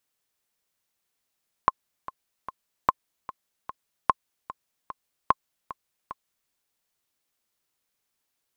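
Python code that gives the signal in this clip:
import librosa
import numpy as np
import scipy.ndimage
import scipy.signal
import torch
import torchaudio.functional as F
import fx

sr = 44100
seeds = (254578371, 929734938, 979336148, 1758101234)

y = fx.click_track(sr, bpm=149, beats=3, bars=4, hz=1060.0, accent_db=17.0, level_db=-4.5)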